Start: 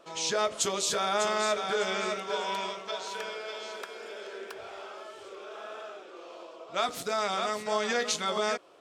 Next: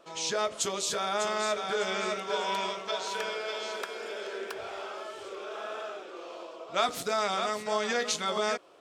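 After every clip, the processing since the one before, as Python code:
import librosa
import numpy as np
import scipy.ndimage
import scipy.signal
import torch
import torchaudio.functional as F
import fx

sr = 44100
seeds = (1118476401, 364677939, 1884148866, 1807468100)

y = fx.rider(x, sr, range_db=4, speed_s=2.0)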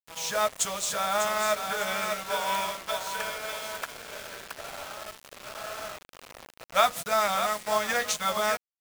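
y = fx.curve_eq(x, sr, hz=(200.0, 340.0, 530.0, 1800.0, 4500.0, 9700.0), db=(0, -19, 1, 3, -3, 5))
y = fx.quant_dither(y, sr, seeds[0], bits=6, dither='none')
y = fx.upward_expand(y, sr, threshold_db=-39.0, expansion=1.5)
y = y * 10.0 ** (4.5 / 20.0)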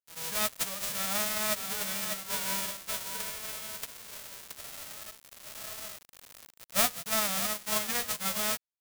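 y = fx.envelope_flatten(x, sr, power=0.1)
y = y * 10.0 ** (-4.0 / 20.0)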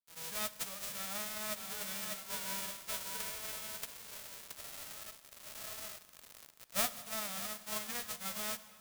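y = fx.rider(x, sr, range_db=4, speed_s=0.5)
y = fx.rev_plate(y, sr, seeds[1], rt60_s=2.7, hf_ratio=0.75, predelay_ms=0, drr_db=13.5)
y = y * 10.0 ** (-8.0 / 20.0)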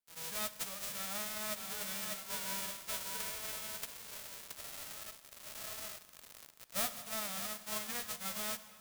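y = 10.0 ** (-29.0 / 20.0) * np.tanh(x / 10.0 ** (-29.0 / 20.0))
y = y * 10.0 ** (1.0 / 20.0)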